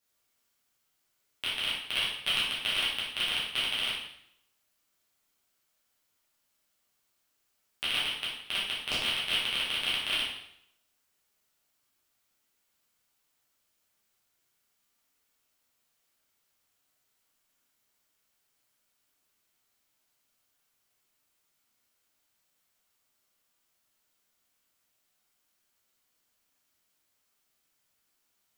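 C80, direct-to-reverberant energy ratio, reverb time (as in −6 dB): 5.5 dB, −8.5 dB, 0.70 s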